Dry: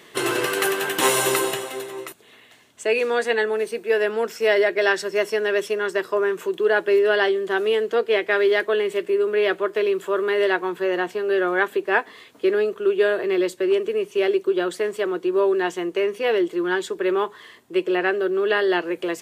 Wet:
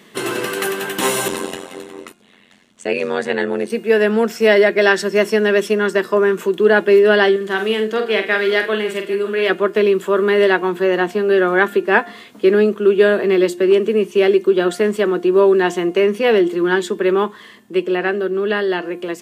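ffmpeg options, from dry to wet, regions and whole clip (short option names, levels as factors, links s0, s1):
-filter_complex "[0:a]asettb=1/sr,asplit=3[s0][s1][s2];[s0]atrim=end=1.284[s3];[s1]atrim=start=1.28:end=3.7,asetpts=PTS-STARTPTS,afade=t=in:d=0.004:c=qsin,afade=t=out:st=2.416:d=0.004:c=qsin,tremolo=f=90:d=0.947,lowpass=10000[s4];[s2]atrim=start=3.696[s5];[s3][s4]acrossfade=d=0.004:c1=hsin:c2=qsin[s6];[s6][s5]acrossfade=d=0.004:c1=qsin:c2=hsin,asettb=1/sr,asplit=3[s7][s8][s9];[s7]atrim=end=7.364[s10];[s8]atrim=start=7.36:end=9.5,asetpts=PTS-STARTPTS,afade=t=in:d=0.004:c=qsin,afade=t=out:st=2.136:d=0.004:c=qsin,equalizer=f=280:w=0.32:g=-6.5,aecho=1:1:46|80|550:0.447|0.126|0.119,atrim=end_sample=94374[s11];[s9]atrim=start=9.496[s12];[s10][s11]acrossfade=d=0.004:c1=hsin:c2=qsin[s13];[s13][s12]acrossfade=d=0.004:c1=qsin:c2=hsin,equalizer=f=210:w=3.1:g=14.5,bandreject=f=352.9:t=h:w=4,bandreject=f=705.8:t=h:w=4,bandreject=f=1058.7:t=h:w=4,bandreject=f=1411.6:t=h:w=4,bandreject=f=1764.5:t=h:w=4,bandreject=f=2117.4:t=h:w=4,bandreject=f=2470.3:t=h:w=4,bandreject=f=2823.2:t=h:w=4,bandreject=f=3176.1:t=h:w=4,bandreject=f=3529:t=h:w=4,dynaudnorm=f=390:g=13:m=3.76"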